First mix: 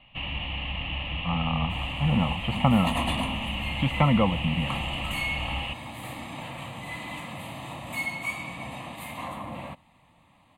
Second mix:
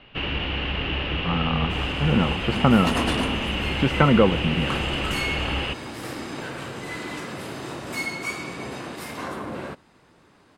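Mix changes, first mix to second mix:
first sound +4.0 dB; master: remove fixed phaser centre 1500 Hz, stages 6

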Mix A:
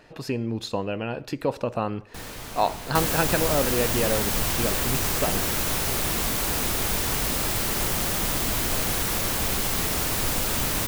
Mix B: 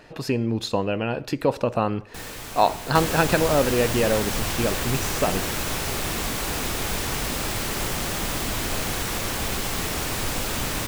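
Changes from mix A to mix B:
speech +4.0 dB; second sound: add high shelf 8600 Hz -8.5 dB; reverb: on, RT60 0.45 s

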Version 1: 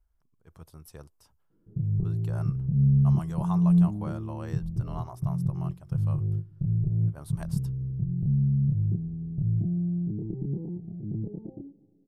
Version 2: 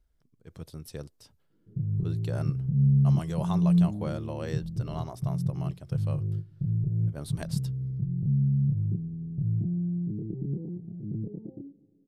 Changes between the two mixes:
background -9.0 dB; master: add graphic EQ 125/250/500/1000/2000/4000/8000 Hz +7/+7/+7/-5/+5/+10/+3 dB

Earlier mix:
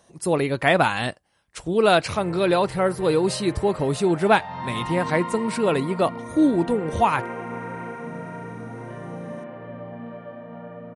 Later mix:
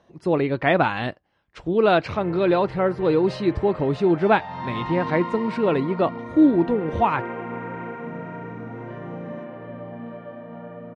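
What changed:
speech: add air absorption 230 m; master: add bell 320 Hz +3.5 dB 0.59 oct

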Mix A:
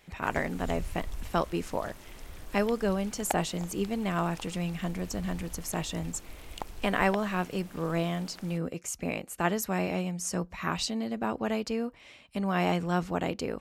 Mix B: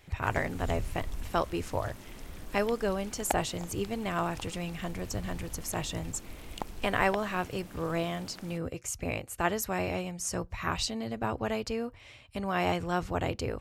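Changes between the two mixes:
speech: add resonant low shelf 140 Hz +7.5 dB, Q 3; background: add bell 210 Hz +6 dB 1.5 oct

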